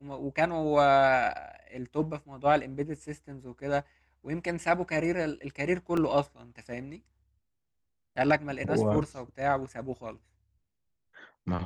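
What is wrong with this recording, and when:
5.97 gap 3.4 ms

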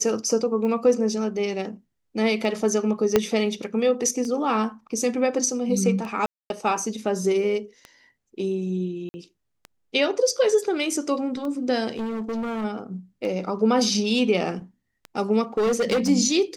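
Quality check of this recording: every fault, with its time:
tick 33 1/3 rpm -21 dBFS
3.16 pop -4 dBFS
6.26–6.5 gap 0.241 s
9.09–9.14 gap 50 ms
11.9–12.65 clipped -25.5 dBFS
15.57–16.1 clipped -18 dBFS

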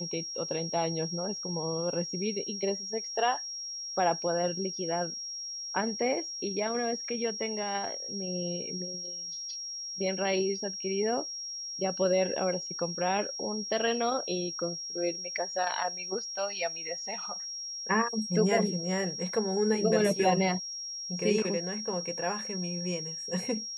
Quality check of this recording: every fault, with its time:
tone 5600 Hz -36 dBFS

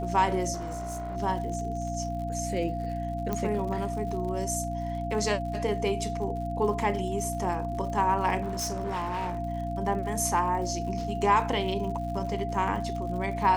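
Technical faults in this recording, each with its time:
crackle 92/s -38 dBFS
hum 60 Hz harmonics 5 -34 dBFS
tone 690 Hz -33 dBFS
0.53–1.17 clipped -31.5 dBFS
3.33 pop -16 dBFS
8.41–9.39 clipped -28 dBFS

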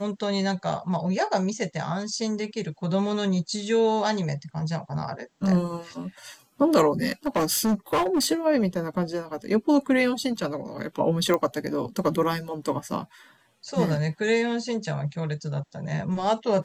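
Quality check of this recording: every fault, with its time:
7.26–8.27 clipped -19 dBFS
11.34 pop -12 dBFS

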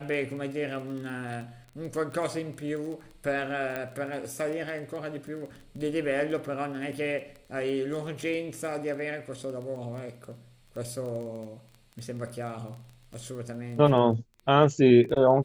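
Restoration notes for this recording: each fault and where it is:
crackle 15/s -35 dBFS
3.76 pop -19 dBFS

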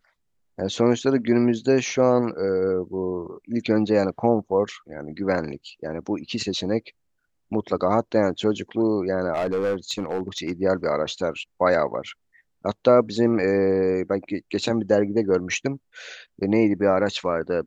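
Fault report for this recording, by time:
9.33–10.52 clipped -20 dBFS

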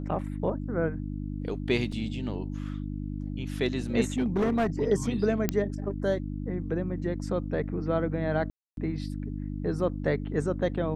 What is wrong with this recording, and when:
hum 50 Hz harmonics 6 -34 dBFS
1.92 gap 4.1 ms
4.18–4.67 clipped -21.5 dBFS
5.49 pop -10 dBFS
8.5–8.77 gap 0.272 s

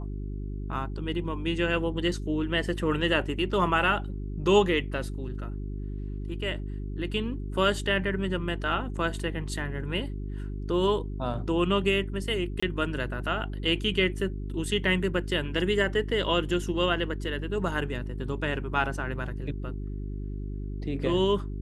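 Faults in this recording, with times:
hum 50 Hz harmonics 8 -34 dBFS
12.6–12.62 gap 25 ms

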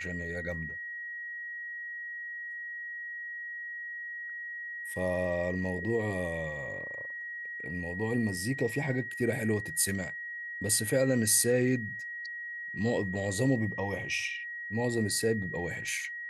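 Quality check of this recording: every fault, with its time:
tone 1900 Hz -37 dBFS

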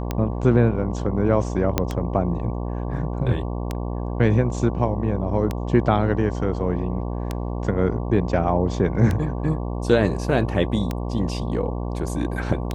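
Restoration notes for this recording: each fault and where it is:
buzz 60 Hz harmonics 19 -27 dBFS
tick 33 1/3 rpm -11 dBFS
1.78 pop -5 dBFS

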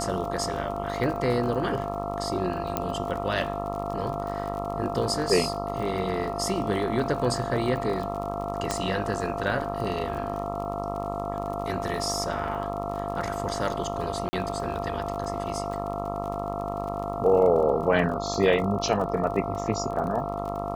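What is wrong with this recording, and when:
buzz 50 Hz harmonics 27 -33 dBFS
crackle 39/s -33 dBFS
tone 690 Hz -32 dBFS
2.77 pop -11 dBFS
8.71 pop -11 dBFS
14.29–14.33 gap 40 ms

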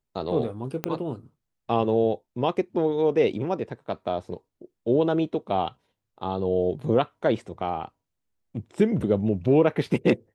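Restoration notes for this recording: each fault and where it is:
0.84 pop -12 dBFS

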